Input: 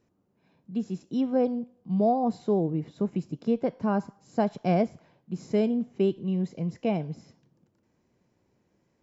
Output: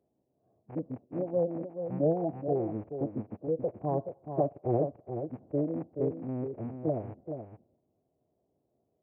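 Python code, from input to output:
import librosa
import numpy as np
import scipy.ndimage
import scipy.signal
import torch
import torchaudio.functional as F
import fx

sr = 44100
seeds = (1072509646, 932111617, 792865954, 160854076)

p1 = fx.rattle_buzz(x, sr, strikes_db=-42.0, level_db=-19.0)
p2 = scipy.signal.sosfilt(scipy.signal.butter(2, 110.0, 'highpass', fs=sr, output='sos'), p1)
p3 = fx.rider(p2, sr, range_db=10, speed_s=0.5)
p4 = p2 + F.gain(torch.from_numpy(p3), -2.0).numpy()
p5 = fx.ladder_lowpass(p4, sr, hz=770.0, resonance_pct=55)
p6 = p5 + fx.echo_single(p5, sr, ms=428, db=-8.0, dry=0)
p7 = fx.pitch_keep_formants(p6, sr, semitones=-6.5)
y = F.gain(torch.from_numpy(p7), -3.0).numpy()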